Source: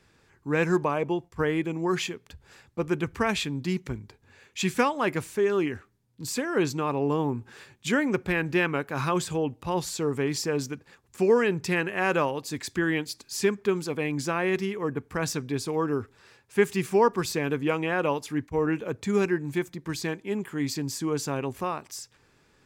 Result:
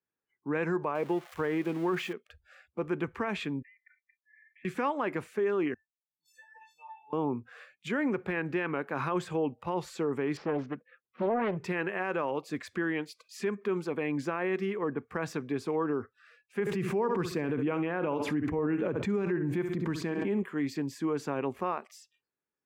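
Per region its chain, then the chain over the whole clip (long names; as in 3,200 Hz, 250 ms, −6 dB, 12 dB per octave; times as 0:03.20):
0:00.95–0:02.13: spike at every zero crossing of −24.5 dBFS + high-shelf EQ 7,200 Hz −9 dB
0:03.62–0:04.65: flat-topped band-pass 1,900 Hz, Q 3.6 + downward compressor 5 to 1, threshold −57 dBFS + comb filter 3.4 ms, depth 90%
0:05.74–0:07.13: tuned comb filter 890 Hz, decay 0.26 s, mix 100% + background raised ahead of every attack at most 140 dB per second
0:10.37–0:11.57: running median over 5 samples + high-frequency loss of the air 190 metres + highs frequency-modulated by the lows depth 0.69 ms
0:16.60–0:20.43: low-shelf EQ 290 Hz +9 dB + repeating echo 66 ms, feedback 29%, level −14 dB + background raised ahead of every attack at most 54 dB per second
whole clip: brickwall limiter −21 dBFS; noise reduction from a noise print of the clip's start 30 dB; three-way crossover with the lows and the highs turned down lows −13 dB, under 170 Hz, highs −16 dB, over 2,700 Hz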